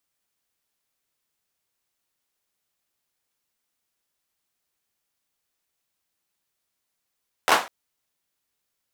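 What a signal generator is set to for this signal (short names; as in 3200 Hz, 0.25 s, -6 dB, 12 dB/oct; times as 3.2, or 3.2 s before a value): hand clap length 0.20 s, apart 12 ms, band 910 Hz, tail 0.32 s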